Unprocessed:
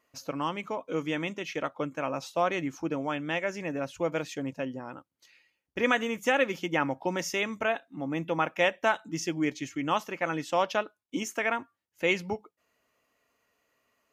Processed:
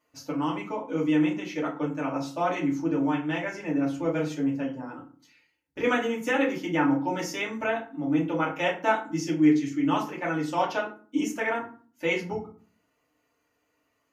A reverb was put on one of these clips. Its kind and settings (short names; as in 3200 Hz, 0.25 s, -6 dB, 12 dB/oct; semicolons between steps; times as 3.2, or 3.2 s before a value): FDN reverb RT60 0.41 s, low-frequency decay 1.6×, high-frequency decay 0.6×, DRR -5 dB; gain -6 dB